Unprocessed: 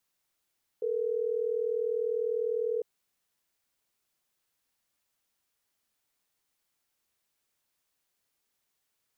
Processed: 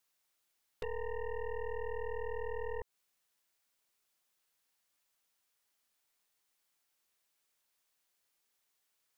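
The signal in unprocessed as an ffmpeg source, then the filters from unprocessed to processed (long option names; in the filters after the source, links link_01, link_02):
-f lavfi -i "aevalsrc='0.0316*(sin(2*PI*440*t)+sin(2*PI*480*t))*clip(min(mod(t,6),2-mod(t,6))/0.005,0,1)':duration=3.12:sample_rate=44100"
-af "lowshelf=frequency=330:gain=-8,acompressor=threshold=-38dB:ratio=16,aeval=exprs='0.0237*(cos(1*acos(clip(val(0)/0.0237,-1,1)))-cos(1*PI/2))+0.0075*(cos(6*acos(clip(val(0)/0.0237,-1,1)))-cos(6*PI/2))':channel_layout=same"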